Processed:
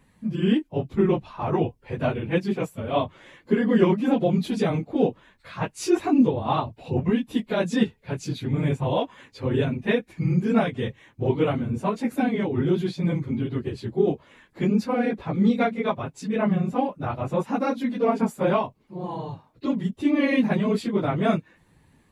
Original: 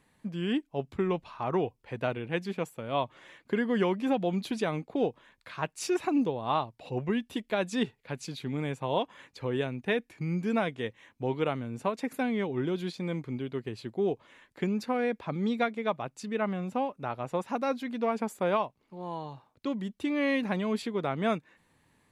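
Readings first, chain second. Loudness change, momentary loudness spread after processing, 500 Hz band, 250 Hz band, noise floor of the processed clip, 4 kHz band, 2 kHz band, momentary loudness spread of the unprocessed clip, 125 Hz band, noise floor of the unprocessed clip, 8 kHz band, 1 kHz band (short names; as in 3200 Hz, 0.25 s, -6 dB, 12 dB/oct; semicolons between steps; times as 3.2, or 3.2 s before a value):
+7.0 dB, 9 LU, +6.0 dB, +8.5 dB, -62 dBFS, +3.5 dB, +3.5 dB, 8 LU, +10.0 dB, -71 dBFS, +3.0 dB, +4.0 dB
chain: phase scrambler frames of 50 ms; low shelf 300 Hz +9 dB; gain +3 dB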